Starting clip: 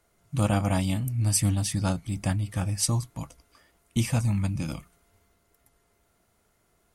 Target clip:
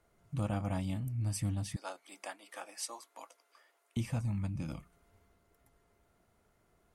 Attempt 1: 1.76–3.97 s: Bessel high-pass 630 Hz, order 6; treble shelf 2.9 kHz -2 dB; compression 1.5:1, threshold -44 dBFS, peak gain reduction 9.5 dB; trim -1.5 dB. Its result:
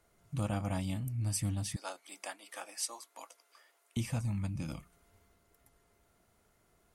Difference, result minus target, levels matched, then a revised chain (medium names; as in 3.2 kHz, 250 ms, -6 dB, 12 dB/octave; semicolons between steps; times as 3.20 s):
8 kHz band +4.0 dB
1.76–3.97 s: Bessel high-pass 630 Hz, order 6; treble shelf 2.9 kHz -8.5 dB; compression 1.5:1, threshold -44 dBFS, peak gain reduction 9.5 dB; trim -1.5 dB